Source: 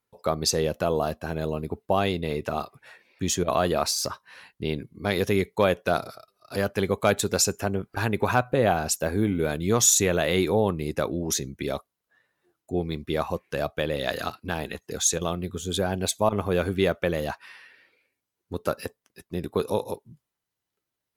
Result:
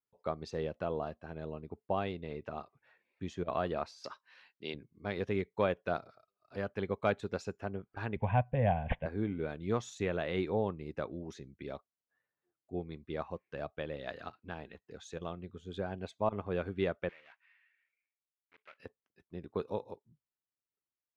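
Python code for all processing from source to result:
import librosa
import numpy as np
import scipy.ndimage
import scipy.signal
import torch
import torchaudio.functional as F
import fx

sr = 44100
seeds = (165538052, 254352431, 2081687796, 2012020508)

y = fx.chain(x, sr, fx.highpass(hz=240.0, slope=12),
    fx.peak_eq(hz=5700.0, db=14.0, octaves=2.4), at=(4.04, 4.74))
y = fx.chain(y, sr, fx.resample_bad(factor=6, down='none', up='filtered'),
    fx.low_shelf(hz=230.0, db=12.0),
    fx.fixed_phaser(hz=1300.0, stages=6), at=(8.16, 9.06))
y = fx.chain(y, sr, fx.block_float(bits=3),
    fx.bandpass_q(hz=2200.0, q=2.4), at=(17.09, 18.8))
y = scipy.signal.sosfilt(scipy.signal.butter(2, 2800.0, 'lowpass', fs=sr, output='sos'), y)
y = fx.upward_expand(y, sr, threshold_db=-35.0, expansion=1.5)
y = y * librosa.db_to_amplitude(-7.5)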